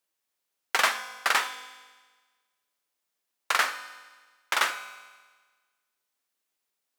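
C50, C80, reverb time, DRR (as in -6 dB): 12.5 dB, 14.0 dB, 1.4 s, 10.5 dB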